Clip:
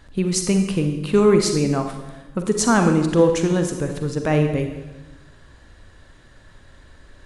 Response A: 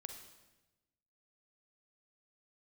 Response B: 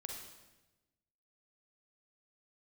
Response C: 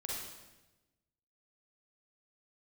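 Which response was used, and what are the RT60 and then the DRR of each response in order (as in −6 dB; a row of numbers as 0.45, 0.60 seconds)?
A; 1.1, 1.1, 1.1 seconds; 5.0, 1.0, −4.0 decibels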